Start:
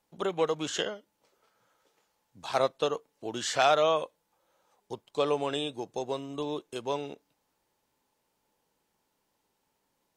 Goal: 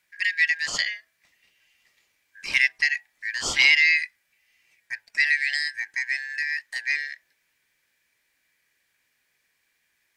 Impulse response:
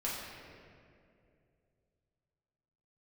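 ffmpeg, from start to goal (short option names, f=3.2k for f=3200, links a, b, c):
-af "afftfilt=real='real(if(lt(b,272),68*(eq(floor(b/68),0)*3+eq(floor(b/68),1)*0+eq(floor(b/68),2)*1+eq(floor(b/68),3)*2)+mod(b,68),b),0)':imag='imag(if(lt(b,272),68*(eq(floor(b/68),0)*3+eq(floor(b/68),1)*0+eq(floor(b/68),2)*1+eq(floor(b/68),3)*2)+mod(b,68),b),0)':win_size=2048:overlap=0.75,bandreject=f=108.7:t=h:w=4,bandreject=f=217.4:t=h:w=4,bandreject=f=326.1:t=h:w=4,bandreject=f=434.8:t=h:w=4,bandreject=f=543.5:t=h:w=4,bandreject=f=652.2:t=h:w=4,bandreject=f=760.9:t=h:w=4,bandreject=f=869.6:t=h:w=4,bandreject=f=978.3:t=h:w=4,bandreject=f=1.087k:t=h:w=4,bandreject=f=1.1957k:t=h:w=4,bandreject=f=1.3044k:t=h:w=4,bandreject=f=1.4131k:t=h:w=4,bandreject=f=1.5218k:t=h:w=4,volume=5.5dB"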